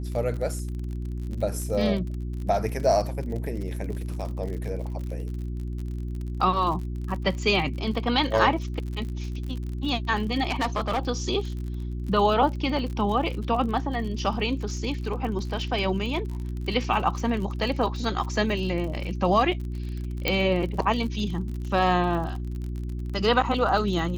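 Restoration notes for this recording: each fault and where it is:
crackle 49/s -33 dBFS
hum 60 Hz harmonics 6 -31 dBFS
10.49–10.99 clipped -21 dBFS
20.28 pop -9 dBFS

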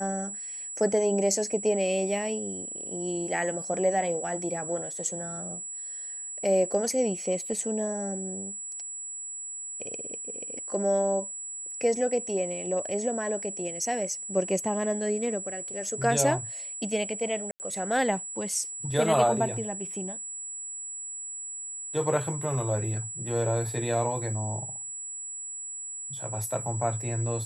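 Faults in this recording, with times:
tone 7800 Hz -35 dBFS
17.51–17.6 gap 89 ms

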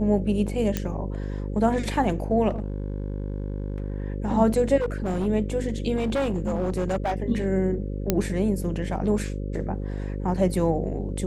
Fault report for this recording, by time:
buzz 50 Hz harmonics 11 -30 dBFS
0.77 pop -11 dBFS
2.49–4.02 clipped -24 dBFS
4.77–5.27 clipped -22 dBFS
5.96–7.16 clipped -21 dBFS
8.1 pop -6 dBFS

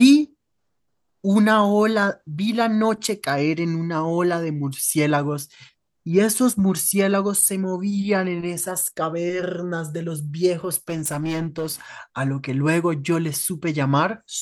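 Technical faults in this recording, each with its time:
10.89–11.74 clipped -21 dBFS

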